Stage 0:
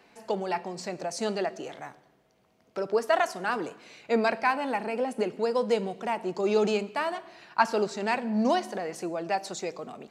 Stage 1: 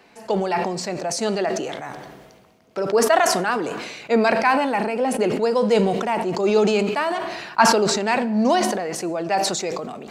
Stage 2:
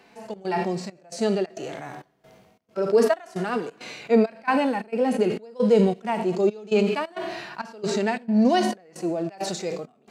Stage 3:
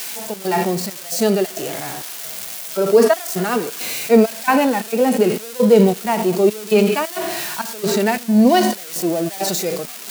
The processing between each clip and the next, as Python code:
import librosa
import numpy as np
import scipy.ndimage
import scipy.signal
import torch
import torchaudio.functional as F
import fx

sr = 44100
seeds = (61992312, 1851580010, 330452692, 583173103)

y1 = fx.sustainer(x, sr, db_per_s=37.0)
y1 = F.gain(torch.from_numpy(y1), 6.0).numpy()
y2 = fx.dynamic_eq(y1, sr, hz=990.0, q=1.3, threshold_db=-34.0, ratio=4.0, max_db=-5)
y2 = fx.step_gate(y2, sr, bpm=134, pattern='xxx.xxxx..', floor_db=-24.0, edge_ms=4.5)
y2 = fx.hpss(y2, sr, part='percussive', gain_db=-15)
y2 = F.gain(torch.from_numpy(y2), 1.5).numpy()
y3 = y2 + 0.5 * 10.0 ** (-24.0 / 20.0) * np.diff(np.sign(y2), prepend=np.sign(y2[:1]))
y3 = F.gain(torch.from_numpy(y3), 6.5).numpy()